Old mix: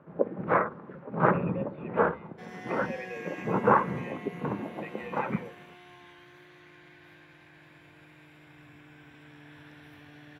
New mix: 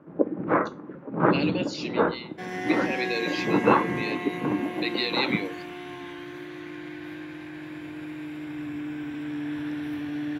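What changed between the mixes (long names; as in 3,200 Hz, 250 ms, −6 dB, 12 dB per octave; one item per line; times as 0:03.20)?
speech: remove formant resonators in series e
second sound +10.5 dB
master: add parametric band 300 Hz +13.5 dB 0.42 octaves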